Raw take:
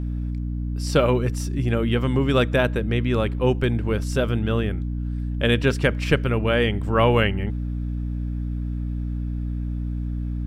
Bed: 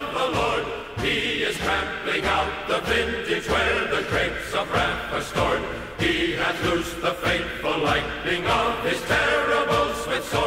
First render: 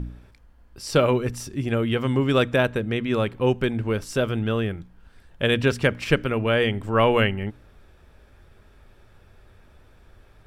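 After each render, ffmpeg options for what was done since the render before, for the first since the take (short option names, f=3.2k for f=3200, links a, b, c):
-af "bandreject=f=60:t=h:w=4,bandreject=f=120:t=h:w=4,bandreject=f=180:t=h:w=4,bandreject=f=240:t=h:w=4,bandreject=f=300:t=h:w=4"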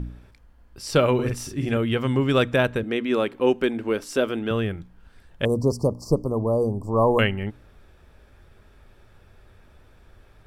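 -filter_complex "[0:a]asettb=1/sr,asplit=3[a][b][c];[a]atrim=end=1.144[d];[b]atrim=start=1.14:end=1.77,asetpts=PTS-STARTPTS,afade=t=in:d=0.004:c=qsin,afade=t=out:st=0.626:d=0.004:c=qsin,asplit=2[e][f];[f]adelay=47,volume=-4.5dB[g];[e][g]amix=inputs=2:normalize=0,atrim=end_sample=27783[h];[c]atrim=start=1.766[i];[d][h]acrossfade=d=0.004:c1=hsin:c2=qsin[j];[j][i]acrossfade=d=0.004:c1=qsin:c2=hsin,asettb=1/sr,asplit=3[k][l][m];[k]atrim=end=2.834[n];[l]atrim=start=2.83:end=4.51,asetpts=PTS-STARTPTS,afade=t=in:d=0.004:c=qsin,afade=t=out:st=1.676:d=0.004:c=qsin,lowshelf=f=190:t=q:w=1.5:g=-12[o];[m]atrim=start=4.506[p];[n][o]acrossfade=d=0.004:c1=hsin:c2=qsin[q];[q][p]acrossfade=d=0.004:c1=qsin:c2=hsin,asettb=1/sr,asplit=3[r][s][t];[r]atrim=end=5.454[u];[s]atrim=start=5.45:end=7.19,asetpts=PTS-STARTPTS,afade=t=in:d=0.004:c=qsin,afade=t=out:st=1.736:d=0.004:c=qsin,asuperstop=centerf=2300:order=20:qfactor=0.67[v];[t]atrim=start=7.186[w];[u][v]acrossfade=d=0.004:c1=hsin:c2=qsin[x];[x][w]acrossfade=d=0.004:c1=qsin:c2=hsin"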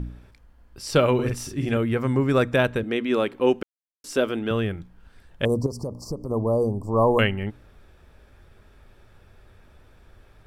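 -filter_complex "[0:a]asettb=1/sr,asplit=3[a][b][c];[a]atrim=end=1.834[d];[b]atrim=start=1.83:end=2.53,asetpts=PTS-STARTPTS,afade=t=in:d=0.004:c=qsin,afade=t=out:st=0.696:d=0.004:c=qsin,equalizer=f=3.1k:t=o:w=0.41:g=-14[e];[c]atrim=start=2.526[f];[d][e]acrossfade=d=0.004:c1=hsin:c2=qsin[g];[g][f]acrossfade=d=0.004:c1=qsin:c2=hsin,asettb=1/sr,asplit=3[h][i][j];[h]atrim=end=5.664[k];[i]atrim=start=5.66:end=6.3,asetpts=PTS-STARTPTS,afade=t=in:d=0.004:c=qsin,afade=t=out:st=0.636:d=0.004:c=qsin,acompressor=threshold=-27dB:ratio=4:attack=3.2:release=140:knee=1:detection=peak[l];[j]atrim=start=6.296[m];[k][l]acrossfade=d=0.004:c1=hsin:c2=qsin[n];[n][m]acrossfade=d=0.004:c1=qsin:c2=hsin,asplit=3[o][p][q];[o]atrim=end=3.63,asetpts=PTS-STARTPTS,afade=t=out:st=3.626:d=0.004:c=hsin[r];[p]atrim=start=3.63:end=4.04,asetpts=PTS-STARTPTS,volume=0[s];[q]atrim=start=4.04,asetpts=PTS-STARTPTS,afade=t=in:d=0.004:c=hsin[t];[r][s][t]concat=n=3:v=0:a=1"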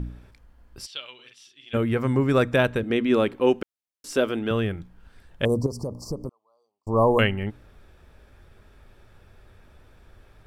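-filter_complex "[0:a]asplit=3[a][b][c];[a]afade=t=out:st=0.85:d=0.02[d];[b]bandpass=f=3.3k:t=q:w=4.9,afade=t=in:st=0.85:d=0.02,afade=t=out:st=1.73:d=0.02[e];[c]afade=t=in:st=1.73:d=0.02[f];[d][e][f]amix=inputs=3:normalize=0,asettb=1/sr,asplit=3[g][h][i];[g]atrim=end=2.904[j];[h]atrim=start=2.9:end=3.35,asetpts=PTS-STARTPTS,afade=t=in:d=0.004:c=qsin,afade=t=out:st=0.446:d=0.004:c=qsin,lowshelf=f=210:g=8.5[k];[i]atrim=start=3.346[l];[j][k]acrossfade=d=0.004:c1=hsin:c2=qsin[m];[m][l]acrossfade=d=0.004:c1=qsin:c2=hsin,asettb=1/sr,asplit=3[n][o][p];[n]atrim=end=6.294[q];[o]atrim=start=6.29:end=6.87,asetpts=PTS-STARTPTS,afade=t=in:d=0.004:c=qsin,afade=t=out:st=0.576:d=0.004:c=qsin,asuperpass=centerf=2700:order=4:qfactor=2.7[r];[p]atrim=start=6.866[s];[q][r]acrossfade=d=0.004:c1=hsin:c2=qsin[t];[t][s]acrossfade=d=0.004:c1=qsin:c2=hsin"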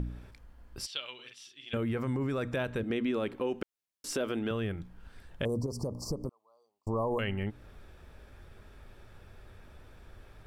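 -af "alimiter=limit=-17dB:level=0:latency=1:release=29,acompressor=threshold=-33dB:ratio=2"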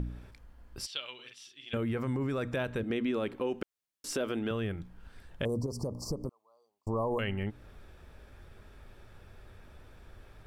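-af "aeval=exprs='0.106*(cos(1*acos(clip(val(0)/0.106,-1,1)))-cos(1*PI/2))+0.00266*(cos(3*acos(clip(val(0)/0.106,-1,1)))-cos(3*PI/2))+0.000841*(cos(5*acos(clip(val(0)/0.106,-1,1)))-cos(5*PI/2))':c=same"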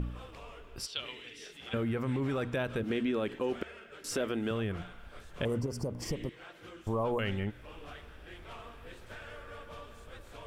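-filter_complex "[1:a]volume=-27dB[a];[0:a][a]amix=inputs=2:normalize=0"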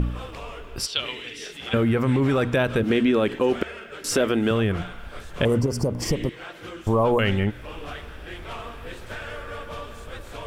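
-af "volume=11.5dB"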